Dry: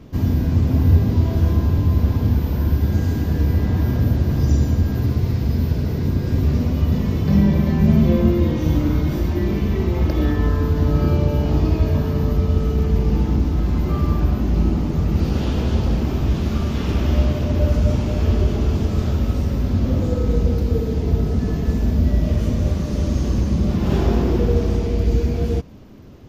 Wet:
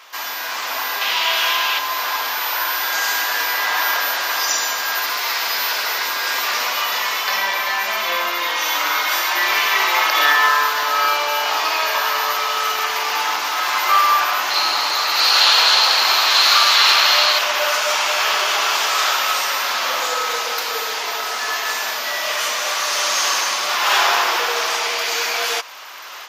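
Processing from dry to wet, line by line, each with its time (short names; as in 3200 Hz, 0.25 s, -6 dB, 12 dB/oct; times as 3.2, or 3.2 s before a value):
1.01–1.79 bell 2900 Hz +11 dB 0.93 oct
14.5–17.39 bell 4200 Hz +14.5 dB 0.21 oct
whole clip: AGC; HPF 1000 Hz 24 dB/oct; maximiser +17 dB; gain -1 dB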